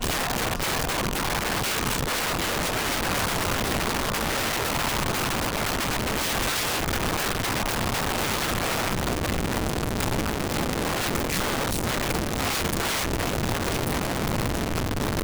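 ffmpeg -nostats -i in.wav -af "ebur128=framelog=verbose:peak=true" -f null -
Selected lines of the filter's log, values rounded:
Integrated loudness:
  I:         -25.4 LUFS
  Threshold: -35.4 LUFS
Loudness range:
  LRA:         1.2 LU
  Threshold: -45.4 LUFS
  LRA low:   -26.0 LUFS
  LRA high:  -24.8 LUFS
True peak:
  Peak:      -15.8 dBFS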